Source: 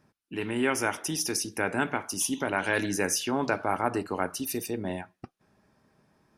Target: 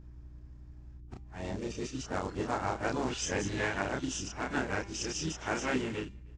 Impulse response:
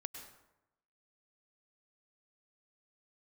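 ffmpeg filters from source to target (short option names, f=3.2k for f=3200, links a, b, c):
-filter_complex "[0:a]areverse,equalizer=f=65:w=1.2:g=12,bandreject=f=199.6:t=h:w=4,bandreject=f=399.2:t=h:w=4,bandreject=f=598.8:t=h:w=4,bandreject=f=798.4:t=h:w=4,bandreject=f=998:t=h:w=4,bandreject=f=1.1976k:t=h:w=4,bandreject=f=1.3972k:t=h:w=4,bandreject=f=1.5968k:t=h:w=4,bandreject=f=1.7964k:t=h:w=4,bandreject=f=1.996k:t=h:w=4,bandreject=f=2.1956k:t=h:w=4,bandreject=f=2.3952k:t=h:w=4,bandreject=f=2.5948k:t=h:w=4,bandreject=f=2.7944k:t=h:w=4,bandreject=f=2.994k:t=h:w=4,bandreject=f=3.1936k:t=h:w=4,bandreject=f=3.3932k:t=h:w=4,bandreject=f=3.5928k:t=h:w=4,bandreject=f=3.7924k:t=h:w=4,bandreject=f=3.992k:t=h:w=4,bandreject=f=4.1916k:t=h:w=4,bandreject=f=4.3912k:t=h:w=4,bandreject=f=4.5908k:t=h:w=4,bandreject=f=4.7904k:t=h:w=4,bandreject=f=4.99k:t=h:w=4,bandreject=f=5.1896k:t=h:w=4,bandreject=f=5.3892k:t=h:w=4,bandreject=f=5.5888k:t=h:w=4,bandreject=f=5.7884k:t=h:w=4,bandreject=f=5.988k:t=h:w=4,asplit=2[a][b];[b]adelay=310,highpass=300,lowpass=3.4k,asoftclip=type=hard:threshold=-20dB,volume=-28dB[c];[a][c]amix=inputs=2:normalize=0,aresample=16000,acrusher=bits=4:mode=log:mix=0:aa=0.000001,aresample=44100,aeval=exprs='val(0)+0.00708*(sin(2*PI*60*n/s)+sin(2*PI*2*60*n/s)/2+sin(2*PI*3*60*n/s)/3+sin(2*PI*4*60*n/s)/4+sin(2*PI*5*60*n/s)/5)':c=same,asplit=2[d][e];[e]adelay=31,volume=-2.5dB[f];[d][f]amix=inputs=2:normalize=0,asplit=4[g][h][i][j];[h]asetrate=22050,aresample=44100,atempo=2,volume=-9dB[k];[i]asetrate=52444,aresample=44100,atempo=0.840896,volume=-10dB[l];[j]asetrate=55563,aresample=44100,atempo=0.793701,volume=-14dB[m];[g][k][l][m]amix=inputs=4:normalize=0,volume=-8dB"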